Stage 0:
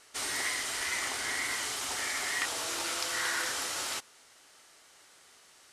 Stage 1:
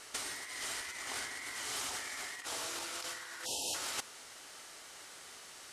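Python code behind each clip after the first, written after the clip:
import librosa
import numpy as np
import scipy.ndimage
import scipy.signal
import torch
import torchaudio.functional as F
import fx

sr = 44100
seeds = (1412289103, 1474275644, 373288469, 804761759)

y = fx.spec_erase(x, sr, start_s=3.45, length_s=0.29, low_hz=960.0, high_hz=2500.0)
y = fx.over_compress(y, sr, threshold_db=-39.0, ratio=-0.5)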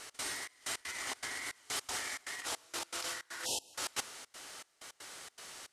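y = fx.step_gate(x, sr, bpm=159, pattern='x.xxx..x.xx', floor_db=-24.0, edge_ms=4.5)
y = y * 10.0 ** (2.5 / 20.0)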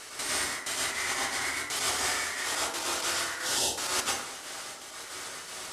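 y = x + 10.0 ** (-22.0 / 20.0) * np.pad(x, (int(1184 * sr / 1000.0), 0))[:len(x)]
y = fx.rev_plate(y, sr, seeds[0], rt60_s=0.65, hf_ratio=0.6, predelay_ms=85, drr_db=-5.0)
y = y * 10.0 ** (4.5 / 20.0)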